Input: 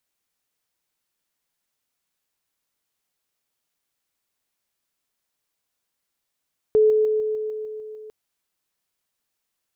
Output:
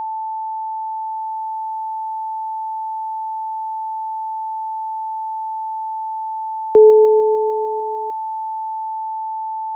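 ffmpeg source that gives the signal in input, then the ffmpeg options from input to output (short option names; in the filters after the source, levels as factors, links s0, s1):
-f lavfi -i "aevalsrc='pow(10,(-12.5-3*floor(t/0.15))/20)*sin(2*PI*431*t)':d=1.35:s=44100"
-filter_complex "[0:a]acrossover=split=200|240[s0][s1][s2];[s2]dynaudnorm=f=120:g=17:m=3.55[s3];[s0][s1][s3]amix=inputs=3:normalize=0,aeval=exprs='val(0)+0.0794*sin(2*PI*880*n/s)':c=same"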